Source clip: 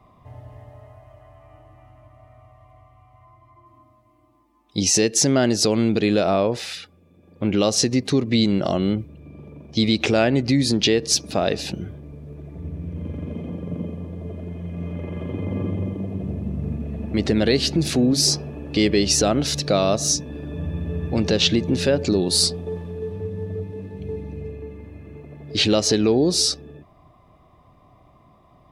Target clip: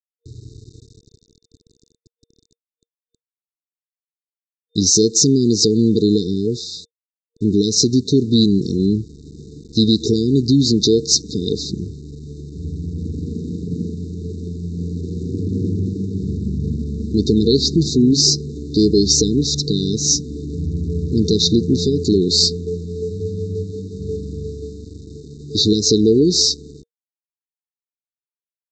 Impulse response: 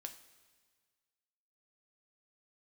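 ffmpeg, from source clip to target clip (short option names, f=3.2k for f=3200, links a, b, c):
-af "aresample=16000,aeval=exprs='val(0)*gte(abs(val(0)),0.00891)':c=same,aresample=44100,afftfilt=real='re*(1-between(b*sr/4096,470,3600))':imag='im*(1-between(b*sr/4096,470,3600))':win_size=4096:overlap=0.75,volume=5dB"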